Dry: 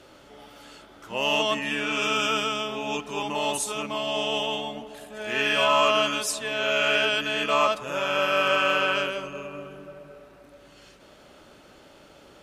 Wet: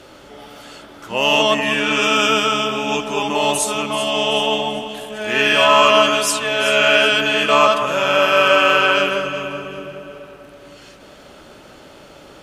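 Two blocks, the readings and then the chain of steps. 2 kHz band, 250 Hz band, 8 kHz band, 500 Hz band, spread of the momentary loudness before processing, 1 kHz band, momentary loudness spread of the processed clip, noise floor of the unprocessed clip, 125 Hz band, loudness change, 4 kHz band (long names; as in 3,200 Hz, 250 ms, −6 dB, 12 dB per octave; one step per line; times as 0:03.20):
+9.0 dB, +9.5 dB, +9.0 dB, +9.5 dB, 14 LU, +9.0 dB, 14 LU, −52 dBFS, +9.0 dB, +9.0 dB, +9.0 dB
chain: delay that swaps between a low-pass and a high-pass 191 ms, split 1,800 Hz, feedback 61%, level −8 dB
level +8.5 dB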